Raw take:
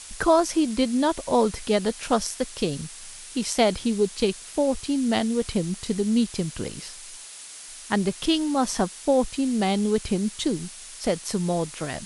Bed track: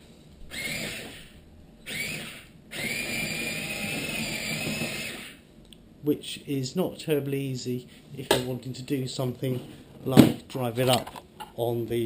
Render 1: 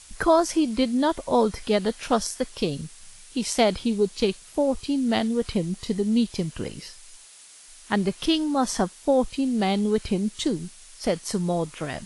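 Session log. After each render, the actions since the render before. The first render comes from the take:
noise reduction from a noise print 7 dB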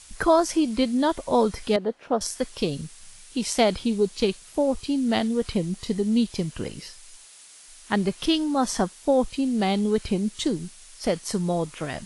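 0:01.76–0:02.21: resonant band-pass 460 Hz, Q 0.83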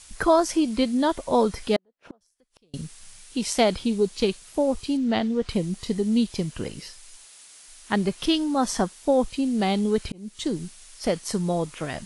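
0:01.76–0:02.74: gate with flip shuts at −27 dBFS, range −38 dB
0:04.97–0:05.49: high-frequency loss of the air 110 metres
0:10.12–0:10.58: fade in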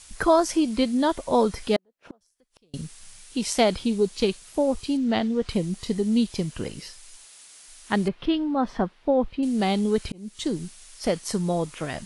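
0:08.08–0:09.43: high-frequency loss of the air 370 metres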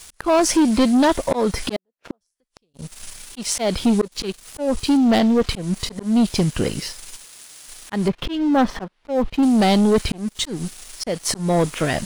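volume swells 263 ms
leveller curve on the samples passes 3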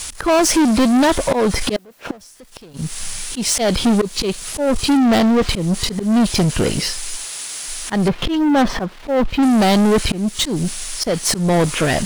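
power curve on the samples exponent 0.5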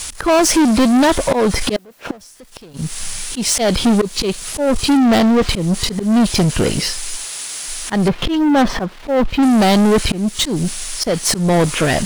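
level +1.5 dB

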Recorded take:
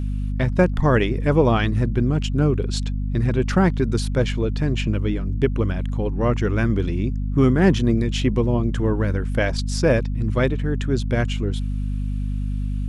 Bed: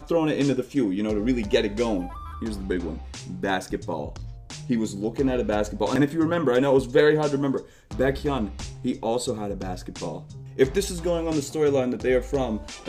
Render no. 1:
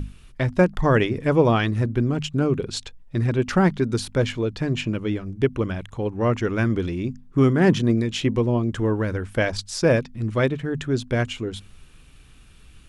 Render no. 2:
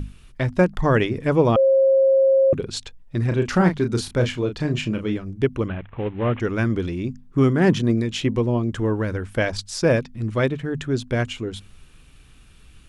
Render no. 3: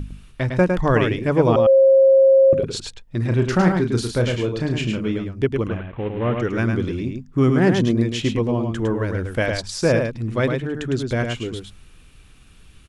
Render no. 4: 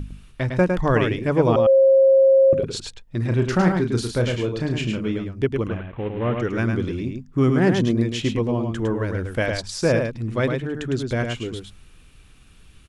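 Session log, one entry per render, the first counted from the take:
mains-hum notches 50/100/150/200/250 Hz
0:01.56–0:02.53: beep over 537 Hz −12.5 dBFS; 0:03.28–0:05.17: double-tracking delay 33 ms −7 dB; 0:05.68–0:06.40: variable-slope delta modulation 16 kbit/s
single-tap delay 106 ms −5 dB
level −1.5 dB

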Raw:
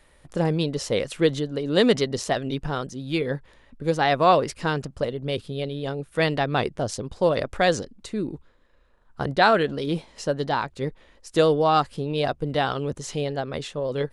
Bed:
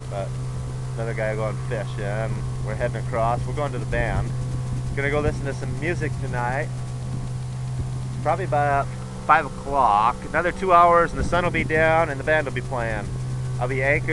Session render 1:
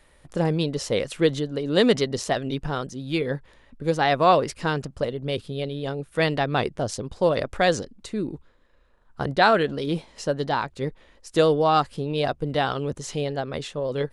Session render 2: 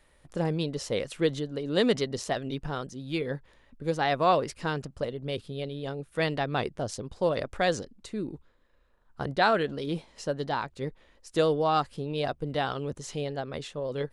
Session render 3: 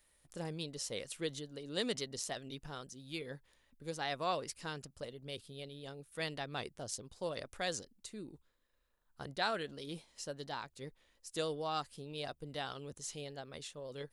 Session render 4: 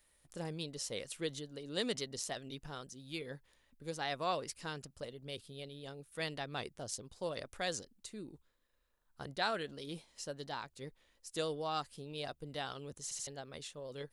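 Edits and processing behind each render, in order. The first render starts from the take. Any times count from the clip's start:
no processing that can be heard
level −5.5 dB
first-order pre-emphasis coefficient 0.8
0:13.03: stutter in place 0.08 s, 3 plays

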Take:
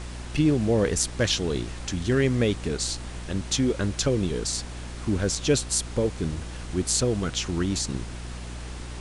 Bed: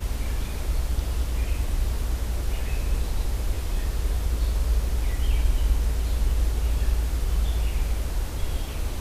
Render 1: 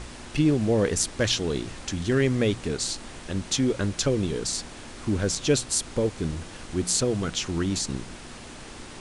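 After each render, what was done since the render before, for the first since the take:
hum removal 60 Hz, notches 3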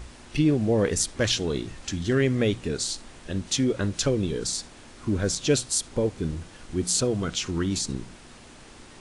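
noise reduction from a noise print 6 dB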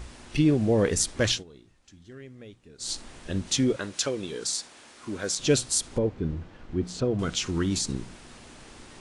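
0:01.30–0:02.92: duck −22.5 dB, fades 0.14 s
0:03.76–0:05.39: high-pass filter 610 Hz 6 dB per octave
0:05.98–0:07.19: head-to-tape spacing loss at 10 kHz 26 dB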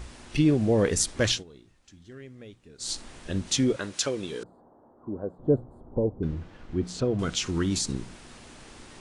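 0:04.43–0:06.23: inverse Chebyshev low-pass filter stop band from 2,300 Hz, stop band 50 dB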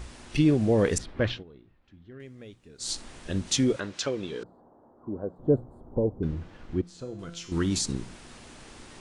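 0:00.98–0:02.20: high-frequency loss of the air 390 metres
0:03.80–0:05.36: high-frequency loss of the air 96 metres
0:06.81–0:07.52: tuned comb filter 170 Hz, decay 0.77 s, mix 80%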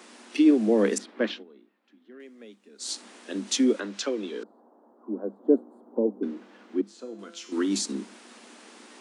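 Chebyshev high-pass filter 200 Hz, order 10
dynamic equaliser 300 Hz, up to +5 dB, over −39 dBFS, Q 1.9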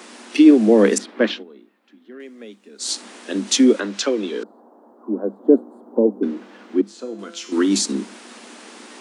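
level +8.5 dB
brickwall limiter −2 dBFS, peak gain reduction 2 dB

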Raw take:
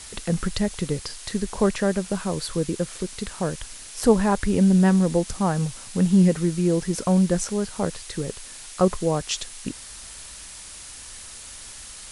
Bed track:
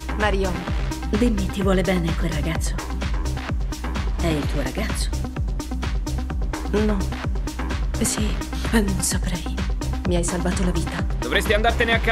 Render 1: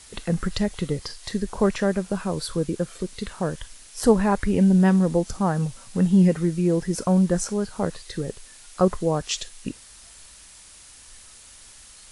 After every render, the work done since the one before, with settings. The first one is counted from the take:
noise reduction from a noise print 7 dB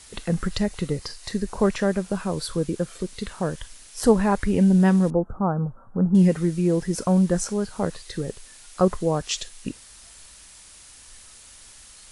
0:00.58–0:01.59: notch filter 3,300 Hz, Q 11
0:05.10–0:06.15: elliptic low-pass filter 1,400 Hz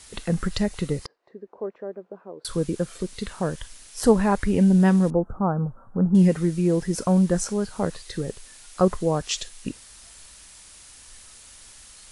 0:01.06–0:02.45: four-pole ladder band-pass 500 Hz, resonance 30%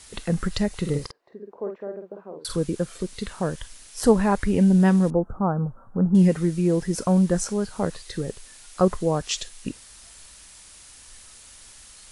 0:00.80–0:02.56: double-tracking delay 49 ms −5.5 dB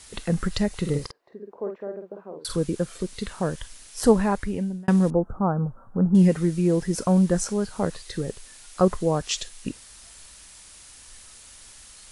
0:04.12–0:04.88: fade out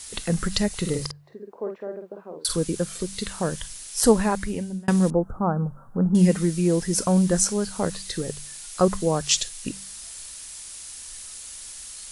high-shelf EQ 3,600 Hz +10.5 dB
hum removal 48.55 Hz, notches 4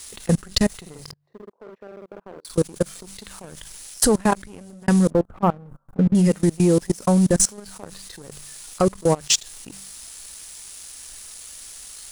output level in coarse steps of 22 dB
leveller curve on the samples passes 2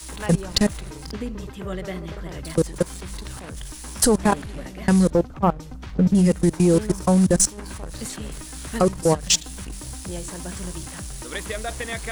mix in bed track −11.5 dB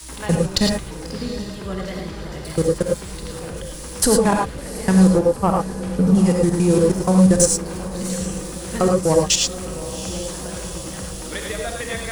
feedback delay with all-pass diffusion 756 ms, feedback 60%, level −14 dB
reverb whose tail is shaped and stops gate 130 ms rising, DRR 1 dB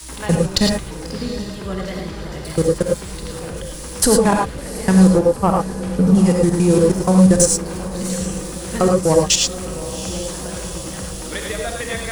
level +2 dB
brickwall limiter −1 dBFS, peak gain reduction 1.5 dB

